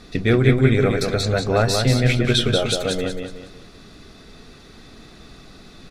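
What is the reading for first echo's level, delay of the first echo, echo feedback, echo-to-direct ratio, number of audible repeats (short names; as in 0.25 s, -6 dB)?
-5.0 dB, 0.185 s, 36%, -4.5 dB, 4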